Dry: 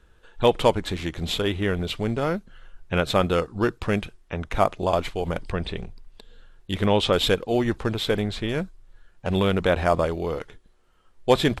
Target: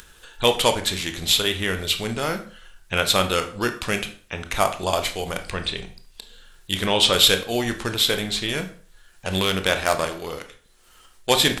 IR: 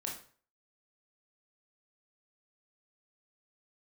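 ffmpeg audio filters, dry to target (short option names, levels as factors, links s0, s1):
-filter_complex "[0:a]asettb=1/sr,asplit=3[s0][s1][s2];[s0]atrim=end=9.344[s3];[s1]atrim=start=9.34:end=11.3,asetpts=PTS-STARTPTS,afade=t=in:d=0.004:c=qsin,afade=t=out:st=1.956:d=0.004:c=qsin,aeval=exprs='0.501*(cos(1*acos(clip(val(0)/0.501,-1,1)))-cos(1*PI/2))+0.0251*(cos(7*acos(clip(val(0)/0.501,-1,1)))-cos(7*PI/2))':c=same[s4];[s2]atrim=start=11.296[s5];[s3][s4]acrossfade=d=0.004:c1=hsin:c2=qsin[s6];[s6][s5]acrossfade=d=0.004:c1=qsin:c2=hsin,acompressor=mode=upward:threshold=0.0112:ratio=2.5,crystalizer=i=9.5:c=0,asplit=2[s7][s8];[1:a]atrim=start_sample=2205,highshelf=f=10000:g=-11[s9];[s8][s9]afir=irnorm=-1:irlink=0,volume=0.944[s10];[s7][s10]amix=inputs=2:normalize=0,volume=0.376"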